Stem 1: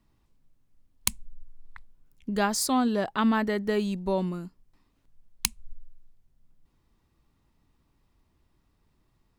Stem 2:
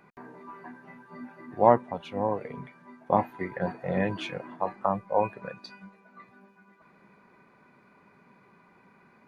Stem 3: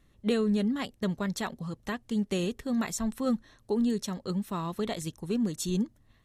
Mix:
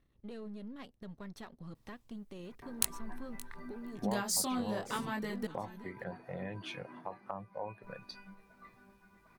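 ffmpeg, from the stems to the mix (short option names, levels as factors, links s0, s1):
-filter_complex "[0:a]acompressor=threshold=0.0282:ratio=3,flanger=delay=19.5:depth=5:speed=0.88,adelay=1750,volume=0.891,asplit=3[s0][s1][s2];[s0]atrim=end=5.47,asetpts=PTS-STARTPTS,afade=t=out:st=5.466:d=0.004:c=hsin[s3];[s1]atrim=start=5.47:end=7.83,asetpts=PTS-STARTPTS,volume=0[s4];[s2]atrim=start=7.83,asetpts=PTS-STARTPTS,afade=t=in:d=0.004:c=hsin[s5];[s3][s4][s5]concat=n=3:v=0:a=1,asplit=2[s6][s7];[s7]volume=0.112[s8];[1:a]equalizer=f=110:t=o:w=0.51:g=6,adelay=2450,volume=0.501[s9];[2:a]aeval=exprs='if(lt(val(0),0),0.447*val(0),val(0))':c=same,lowpass=f=1900:p=1,alimiter=level_in=2.37:limit=0.0631:level=0:latency=1:release=313,volume=0.422,volume=0.531[s10];[s9][s10]amix=inputs=2:normalize=0,equalizer=f=7200:w=7.1:g=-11.5,acompressor=threshold=0.01:ratio=3,volume=1[s11];[s8]aecho=0:1:572:1[s12];[s6][s11][s12]amix=inputs=3:normalize=0,aemphasis=mode=production:type=cd"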